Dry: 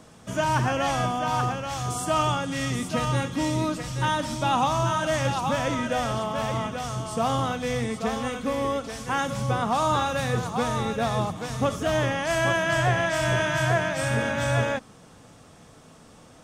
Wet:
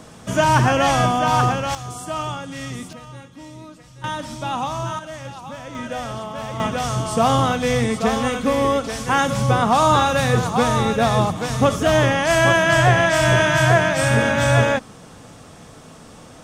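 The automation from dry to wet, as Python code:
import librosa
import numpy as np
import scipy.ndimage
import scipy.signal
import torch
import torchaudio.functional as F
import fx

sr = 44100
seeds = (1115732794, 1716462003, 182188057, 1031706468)

y = fx.gain(x, sr, db=fx.steps((0.0, 8.0), (1.75, -3.0), (2.93, -13.5), (4.04, -2.0), (4.99, -9.0), (5.75, -2.0), (6.6, 8.0)))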